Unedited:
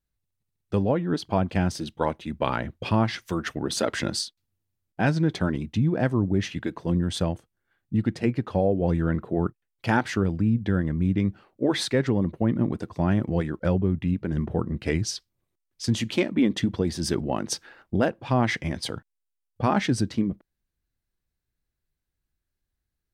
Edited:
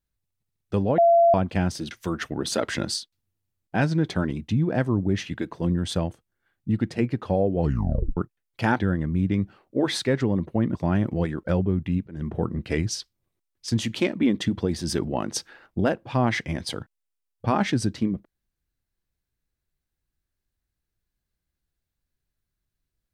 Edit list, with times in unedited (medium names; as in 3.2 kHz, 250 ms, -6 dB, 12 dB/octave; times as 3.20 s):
0.98–1.34 s: bleep 680 Hz -13 dBFS
1.91–3.16 s: delete
8.85 s: tape stop 0.57 s
10.04–10.65 s: delete
12.61–12.91 s: delete
14.23–14.50 s: fade in, from -20.5 dB